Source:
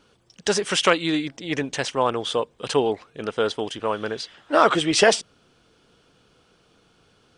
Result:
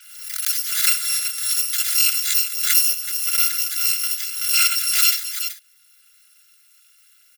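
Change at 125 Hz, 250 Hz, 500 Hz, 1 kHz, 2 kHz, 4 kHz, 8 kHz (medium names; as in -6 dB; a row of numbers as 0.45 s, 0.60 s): under -40 dB, under -40 dB, under -40 dB, -12.5 dB, 0.0 dB, +5.0 dB, +12.0 dB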